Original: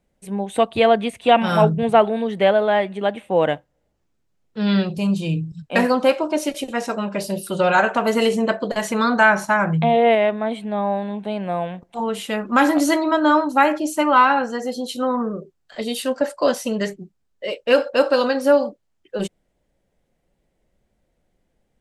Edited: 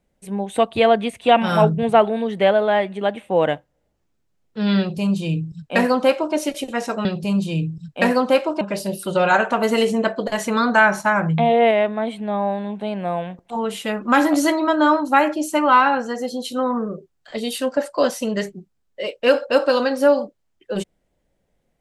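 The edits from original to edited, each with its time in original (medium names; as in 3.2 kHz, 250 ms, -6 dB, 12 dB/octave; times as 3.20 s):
4.79–6.35 s: copy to 7.05 s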